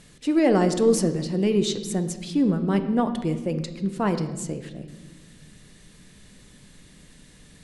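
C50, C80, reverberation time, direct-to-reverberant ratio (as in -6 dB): 11.0 dB, 12.5 dB, 1.3 s, 8.0 dB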